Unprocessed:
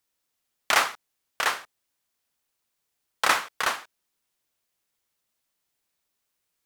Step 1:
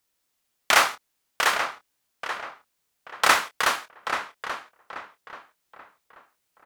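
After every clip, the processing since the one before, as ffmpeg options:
ffmpeg -i in.wav -filter_complex "[0:a]asplit=2[link_01][link_02];[link_02]adelay=26,volume=-10.5dB[link_03];[link_01][link_03]amix=inputs=2:normalize=0,asplit=2[link_04][link_05];[link_05]adelay=833,lowpass=frequency=2400:poles=1,volume=-7.5dB,asplit=2[link_06][link_07];[link_07]adelay=833,lowpass=frequency=2400:poles=1,volume=0.35,asplit=2[link_08][link_09];[link_09]adelay=833,lowpass=frequency=2400:poles=1,volume=0.35,asplit=2[link_10][link_11];[link_11]adelay=833,lowpass=frequency=2400:poles=1,volume=0.35[link_12];[link_04][link_06][link_08][link_10][link_12]amix=inputs=5:normalize=0,volume=3dB" out.wav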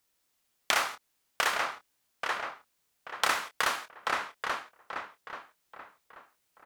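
ffmpeg -i in.wav -af "acompressor=threshold=-25dB:ratio=4" out.wav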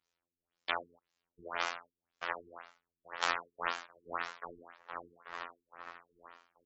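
ffmpeg -i in.wav -af "aecho=1:1:912|1824|2736:0.422|0.0801|0.0152,afftfilt=real='hypot(re,im)*cos(PI*b)':imag='0':win_size=2048:overlap=0.75,afftfilt=real='re*lt(b*sr/1024,420*pow(7800/420,0.5+0.5*sin(2*PI*1.9*pts/sr)))':imag='im*lt(b*sr/1024,420*pow(7800/420,0.5+0.5*sin(2*PI*1.9*pts/sr)))':win_size=1024:overlap=0.75,volume=-2dB" out.wav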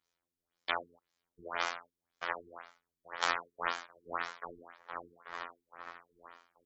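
ffmpeg -i in.wav -af "bandreject=frequency=2700:width=12,volume=1dB" out.wav

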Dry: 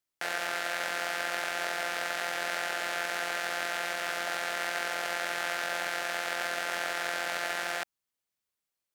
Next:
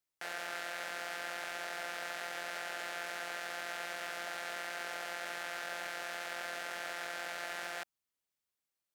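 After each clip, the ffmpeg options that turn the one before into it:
ffmpeg -i in.wav -af "alimiter=limit=-23dB:level=0:latency=1:release=20,volume=-3dB" out.wav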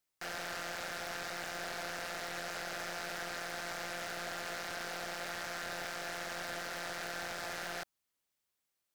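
ffmpeg -i in.wav -af "aeval=exprs='0.015*(abs(mod(val(0)/0.015+3,4)-2)-1)':channel_layout=same,volume=4dB" out.wav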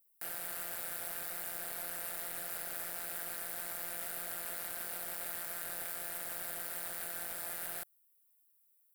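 ffmpeg -i in.wav -af "aexciter=amount=9.7:drive=6.7:freq=8700,volume=-7dB" out.wav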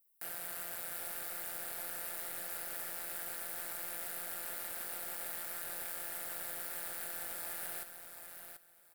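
ffmpeg -i in.wav -af "aecho=1:1:735|1470|2205:0.398|0.0796|0.0159,volume=-1.5dB" out.wav

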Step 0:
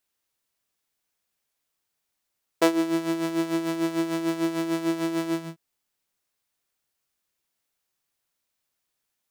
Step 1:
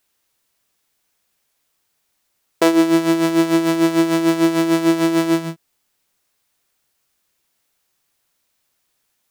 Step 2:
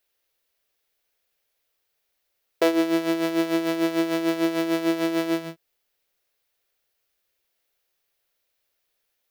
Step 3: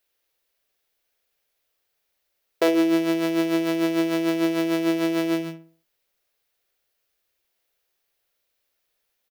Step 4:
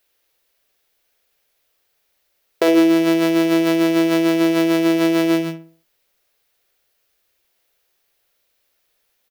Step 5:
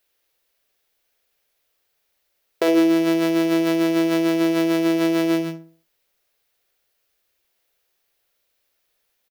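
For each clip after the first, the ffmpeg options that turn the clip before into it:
ffmpeg -i in.wav -af "alimiter=level_in=11.5dB:limit=-1dB:release=50:level=0:latency=1,volume=-1dB" out.wav
ffmpeg -i in.wav -af "equalizer=frequency=125:width_type=o:width=1:gain=-9,equalizer=frequency=250:width_type=o:width=1:gain=-8,equalizer=frequency=500:width_type=o:width=1:gain=5,equalizer=frequency=1000:width_type=o:width=1:gain=-6,equalizer=frequency=8000:width_type=o:width=1:gain=-8,volume=-4dB" out.wav
ffmpeg -i in.wav -filter_complex "[0:a]asplit=2[link_01][link_02];[link_02]adelay=61,lowpass=frequency=1700:poles=1,volume=-8dB,asplit=2[link_03][link_04];[link_04]adelay=61,lowpass=frequency=1700:poles=1,volume=0.41,asplit=2[link_05][link_06];[link_06]adelay=61,lowpass=frequency=1700:poles=1,volume=0.41,asplit=2[link_07][link_08];[link_08]adelay=61,lowpass=frequency=1700:poles=1,volume=0.41,asplit=2[link_09][link_10];[link_10]adelay=61,lowpass=frequency=1700:poles=1,volume=0.41[link_11];[link_01][link_03][link_05][link_07][link_09][link_11]amix=inputs=6:normalize=0" out.wav
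ffmpeg -i in.wav -af "alimiter=level_in=12.5dB:limit=-1dB:release=50:level=0:latency=1,volume=-5dB" out.wav
ffmpeg -i in.wav -af "aecho=1:1:73:0.0794,volume=-3.5dB" out.wav

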